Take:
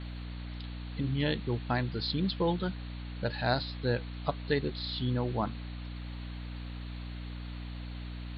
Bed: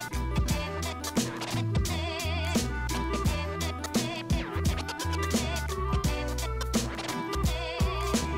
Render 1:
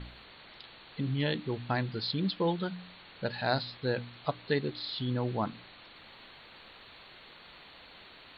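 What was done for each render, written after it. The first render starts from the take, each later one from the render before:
hum removal 60 Hz, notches 5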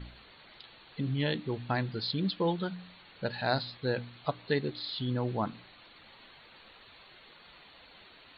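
broadband denoise 6 dB, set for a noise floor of −53 dBFS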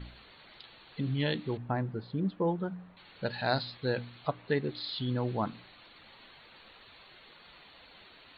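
0:01.57–0:02.97: low-pass filter 1,200 Hz
0:04.27–0:04.70: low-pass filter 2,700 Hz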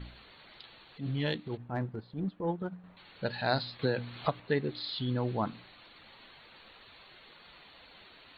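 0:00.84–0:02.84: transient designer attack −11 dB, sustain −7 dB
0:03.79–0:04.40: multiband upward and downward compressor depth 100%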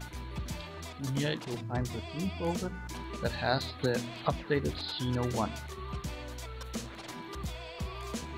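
mix in bed −10.5 dB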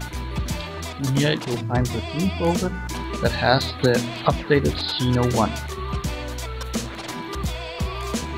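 level +11.5 dB
brickwall limiter −2 dBFS, peak gain reduction 1.5 dB

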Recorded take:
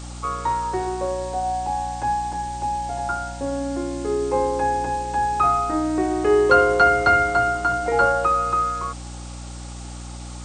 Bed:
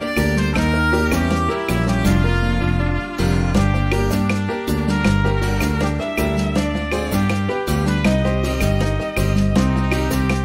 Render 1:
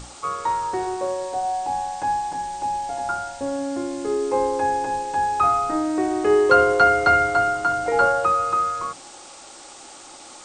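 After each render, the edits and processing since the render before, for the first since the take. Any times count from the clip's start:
mains-hum notches 60/120/180/240/300/360 Hz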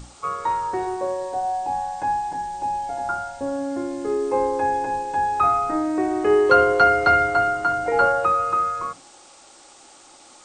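noise reduction from a noise print 6 dB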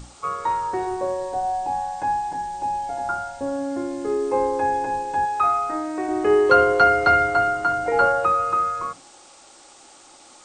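0:00.91–0:01.68: low-shelf EQ 120 Hz +7.5 dB
0:05.25–0:06.09: low-shelf EQ 390 Hz −9.5 dB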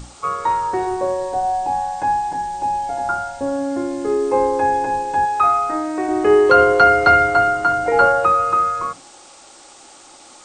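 level +4.5 dB
brickwall limiter −1 dBFS, peak gain reduction 2.5 dB

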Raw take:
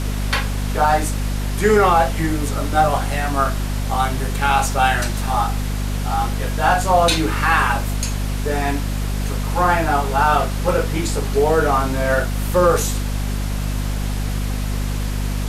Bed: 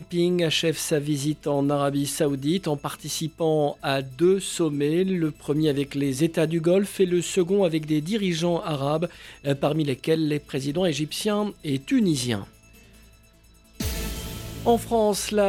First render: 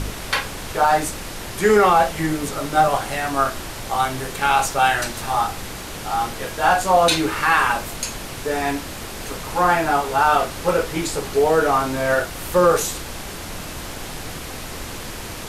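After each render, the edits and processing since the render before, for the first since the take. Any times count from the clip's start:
hum removal 50 Hz, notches 5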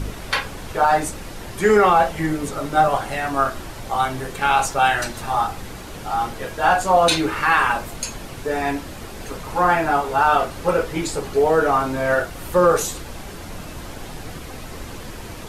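broadband denoise 7 dB, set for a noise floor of −33 dBFS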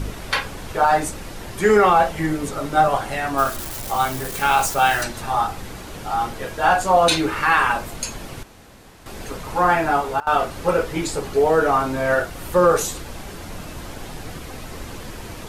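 0:03.38–0:05.03: spike at every zero crossing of −23 dBFS
0:08.43–0:09.06: fill with room tone
0:09.87–0:10.60: duck −22 dB, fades 0.33 s logarithmic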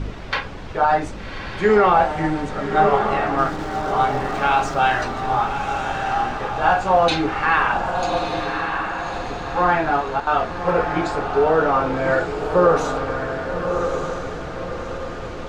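high-frequency loss of the air 160 metres
feedback delay with all-pass diffusion 1,176 ms, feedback 45%, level −5 dB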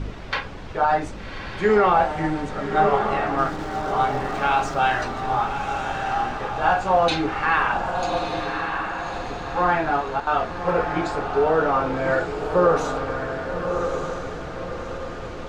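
level −2.5 dB

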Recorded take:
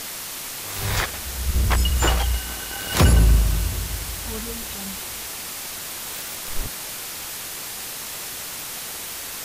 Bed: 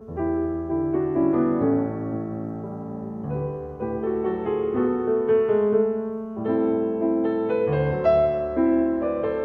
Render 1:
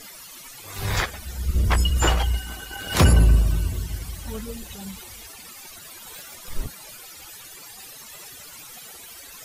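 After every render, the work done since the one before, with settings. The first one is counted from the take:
broadband denoise 16 dB, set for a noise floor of −33 dBFS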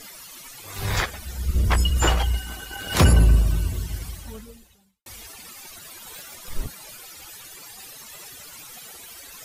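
0:04.06–0:05.06: fade out quadratic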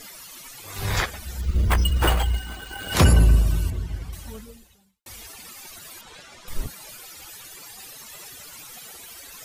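0:01.41–0:02.92: bad sample-rate conversion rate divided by 4×, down filtered, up hold
0:03.70–0:04.13: low-pass filter 1,800 Hz 6 dB per octave
0:06.01–0:06.48: high-frequency loss of the air 89 metres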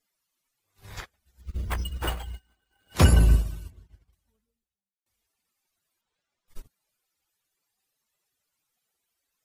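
expander for the loud parts 2.5 to 1, over −37 dBFS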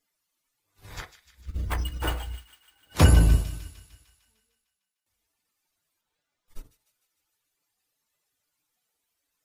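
delay with a high-pass on its return 151 ms, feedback 62%, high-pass 2,300 Hz, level −12 dB
feedback delay network reverb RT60 0.33 s, low-frequency decay 0.9×, high-frequency decay 0.4×, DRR 8 dB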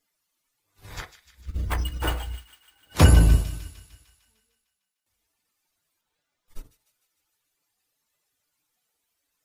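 level +2 dB

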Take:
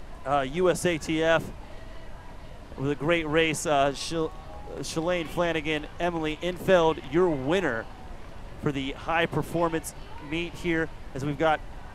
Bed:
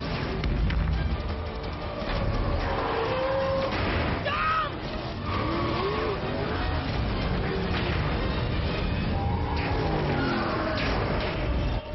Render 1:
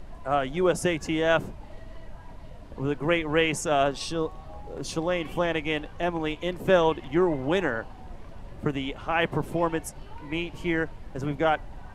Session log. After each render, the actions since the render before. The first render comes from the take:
broadband denoise 6 dB, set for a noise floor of −43 dBFS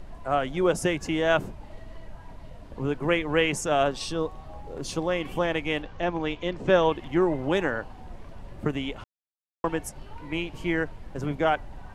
0:05.82–0:06.92: low-pass filter 6,600 Hz 24 dB per octave
0:09.04–0:09.64: silence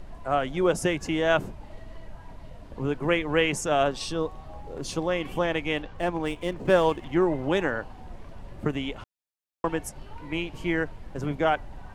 0:05.94–0:07.04: running median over 9 samples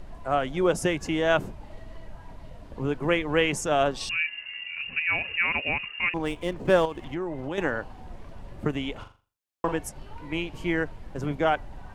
0:04.09–0:06.14: voice inversion scrambler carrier 2,800 Hz
0:06.85–0:07.58: downward compressor 4 to 1, threshold −29 dBFS
0:08.92–0:09.73: flutter between parallel walls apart 7.1 metres, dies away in 0.35 s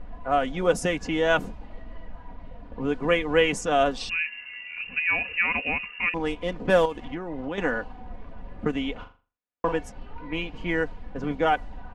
low-pass that shuts in the quiet parts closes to 2,000 Hz, open at −19 dBFS
comb filter 4.1 ms, depth 56%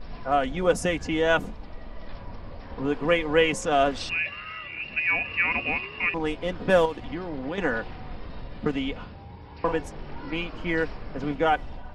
mix in bed −16.5 dB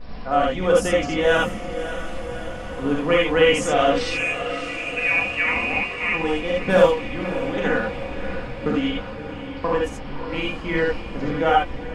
feedback delay with all-pass diffusion 590 ms, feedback 69%, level −12 dB
reverb whose tail is shaped and stops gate 100 ms rising, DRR −2 dB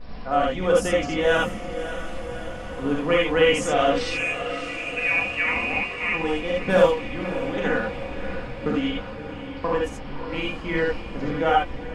level −2 dB

